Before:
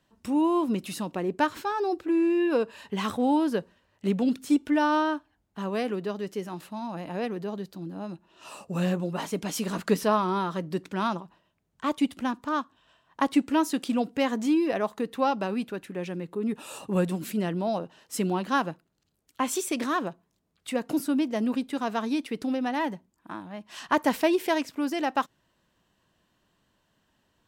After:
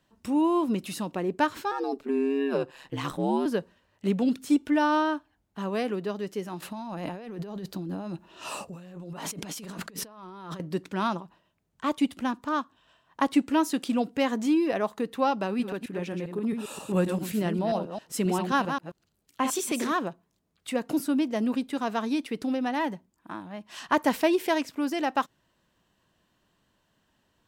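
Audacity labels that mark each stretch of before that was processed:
1.710000	3.460000	ring modulation 70 Hz
6.620000	10.600000	compressor whose output falls as the input rises −39 dBFS
15.460000	19.920000	delay that plays each chunk backwards 133 ms, level −6 dB

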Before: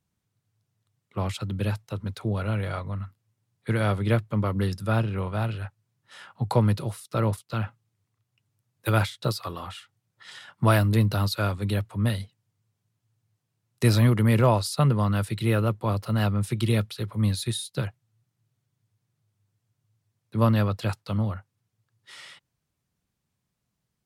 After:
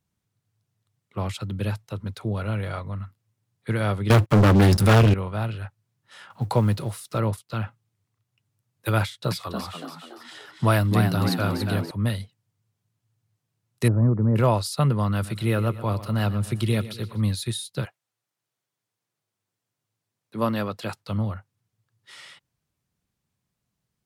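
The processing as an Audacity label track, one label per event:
4.100000	5.140000	leveller curve on the samples passes 5
6.300000	7.180000	mu-law and A-law mismatch coded by mu
9.020000	11.910000	echo with shifted repeats 284 ms, feedback 44%, per repeat +74 Hz, level −6 dB
13.880000	14.360000	Gaussian smoothing sigma 8.5 samples
15.100000	17.220000	repeating echo 121 ms, feedback 51%, level −15 dB
17.840000	20.980000	high-pass filter 560 Hz → 170 Hz

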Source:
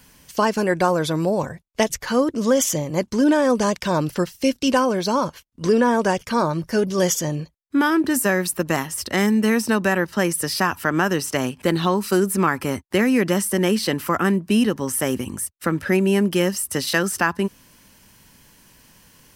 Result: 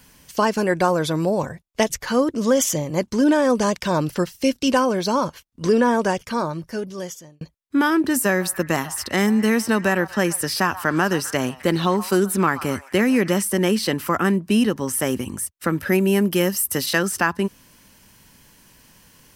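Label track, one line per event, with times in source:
5.900000	7.410000	fade out
8.280000	13.430000	echo through a band-pass that steps 130 ms, band-pass from 1,000 Hz, each repeat 0.7 octaves, level −12 dB
15.690000	16.860000	parametric band 13,000 Hz +12 dB 0.34 octaves

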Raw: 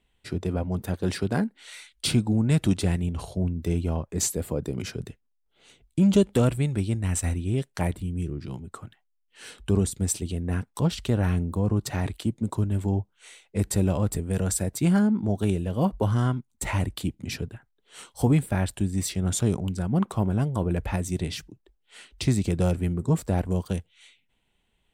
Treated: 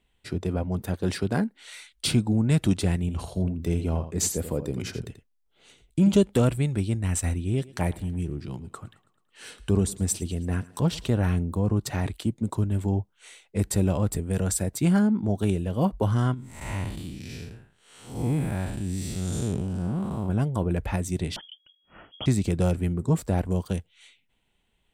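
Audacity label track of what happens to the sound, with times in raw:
3.000000	6.140000	single-tap delay 84 ms −11 dB
7.330000	11.080000	feedback echo with a high-pass in the loop 109 ms, feedback 58%, high-pass 150 Hz, level −20 dB
16.340000	20.290000	spectrum smeared in time width 216 ms
21.360000	22.260000	voice inversion scrambler carrier 3,300 Hz

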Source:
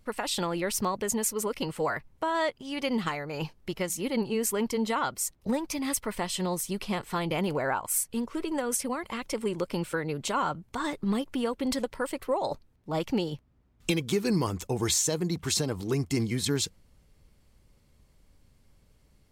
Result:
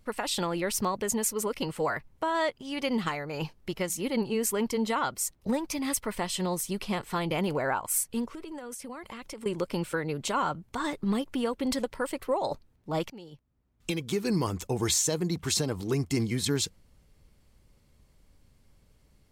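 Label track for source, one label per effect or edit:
8.260000	9.460000	downward compressor 5 to 1, threshold −38 dBFS
13.100000	14.530000	fade in, from −22.5 dB

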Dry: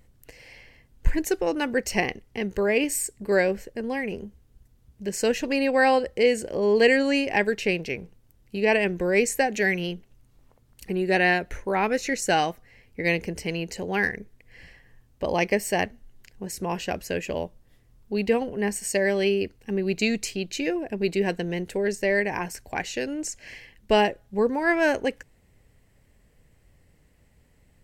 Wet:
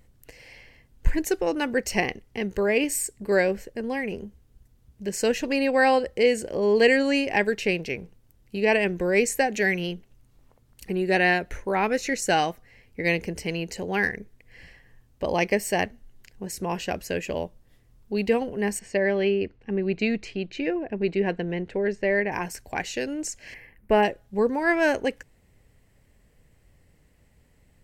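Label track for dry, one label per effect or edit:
18.790000	22.320000	low-pass filter 2,700 Hz
23.540000	24.030000	flat-topped bell 5,000 Hz −15.5 dB

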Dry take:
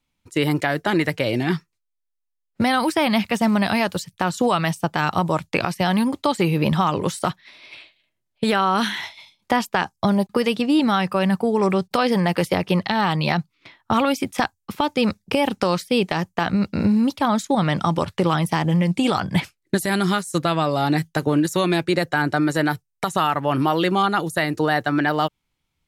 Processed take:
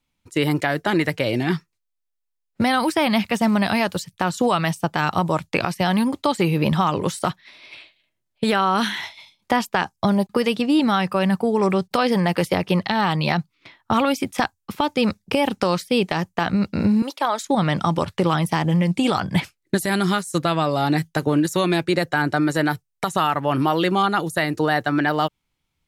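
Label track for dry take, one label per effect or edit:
17.020000	17.470000	high-pass filter 370 Hz 24 dB per octave

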